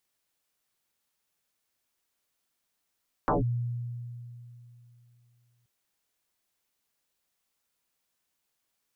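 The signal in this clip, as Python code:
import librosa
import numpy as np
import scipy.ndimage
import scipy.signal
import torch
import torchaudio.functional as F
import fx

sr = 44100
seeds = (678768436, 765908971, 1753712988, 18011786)

y = fx.fm2(sr, length_s=2.38, level_db=-21.0, carrier_hz=120.0, ratio=1.24, index=9.0, index_s=0.15, decay_s=2.98, shape='linear')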